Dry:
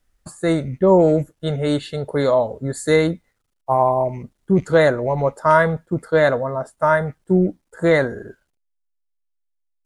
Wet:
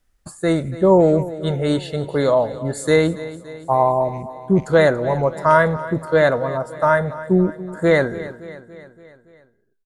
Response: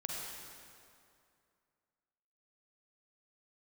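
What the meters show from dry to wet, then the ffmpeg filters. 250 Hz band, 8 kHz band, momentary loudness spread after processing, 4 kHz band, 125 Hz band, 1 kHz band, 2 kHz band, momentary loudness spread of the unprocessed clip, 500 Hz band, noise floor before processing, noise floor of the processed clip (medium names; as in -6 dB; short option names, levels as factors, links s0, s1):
+0.5 dB, +0.5 dB, 10 LU, +0.5 dB, +0.5 dB, +0.5 dB, +0.5 dB, 10 LU, +0.5 dB, -72 dBFS, -63 dBFS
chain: -filter_complex "[0:a]aecho=1:1:284|568|852|1136|1420:0.158|0.0903|0.0515|0.0294|0.0167,asplit=2[s0][s1];[1:a]atrim=start_sample=2205,afade=t=out:st=0.28:d=0.01,atrim=end_sample=12789[s2];[s1][s2]afir=irnorm=-1:irlink=0,volume=0.0708[s3];[s0][s3]amix=inputs=2:normalize=0"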